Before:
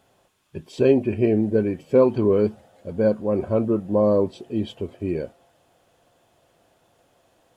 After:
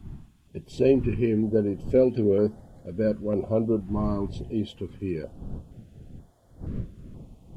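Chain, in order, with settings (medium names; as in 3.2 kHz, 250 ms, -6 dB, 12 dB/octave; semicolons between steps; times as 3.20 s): wind noise 150 Hz -36 dBFS; step-sequenced notch 2.1 Hz 510–2600 Hz; trim -2.5 dB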